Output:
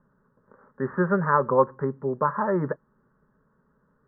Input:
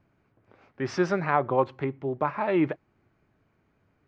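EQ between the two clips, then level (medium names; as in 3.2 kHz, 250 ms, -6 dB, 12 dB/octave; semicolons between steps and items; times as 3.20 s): Chebyshev low-pass 1.8 kHz, order 5; static phaser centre 480 Hz, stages 8; +6.5 dB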